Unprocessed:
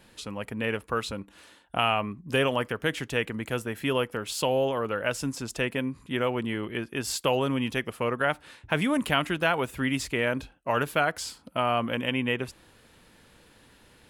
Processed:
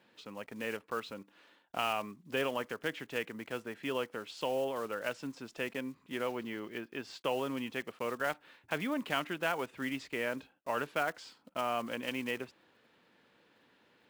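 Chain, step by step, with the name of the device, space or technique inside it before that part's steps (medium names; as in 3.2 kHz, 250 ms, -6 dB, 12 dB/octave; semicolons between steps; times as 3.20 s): early digital voice recorder (band-pass 210–3700 Hz; block-companded coder 5-bit); 6.27–7.21 s: peaking EQ 8.9 kHz -6 dB 0.94 oct; trim -8 dB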